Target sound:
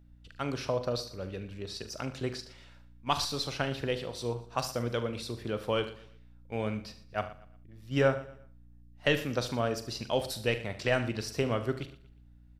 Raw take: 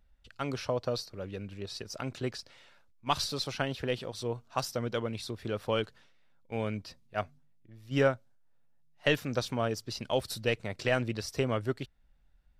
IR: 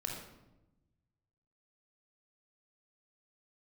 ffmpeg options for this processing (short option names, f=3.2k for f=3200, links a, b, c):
-filter_complex "[0:a]asplit=2[a][b];[b]aecho=0:1:42|74:0.237|0.2[c];[a][c]amix=inputs=2:normalize=0,aeval=exprs='val(0)+0.00158*(sin(2*PI*60*n/s)+sin(2*PI*2*60*n/s)/2+sin(2*PI*3*60*n/s)/3+sin(2*PI*4*60*n/s)/4+sin(2*PI*5*60*n/s)/5)':c=same,asplit=2[d][e];[e]aecho=0:1:118|236|354:0.141|0.0466|0.0154[f];[d][f]amix=inputs=2:normalize=0"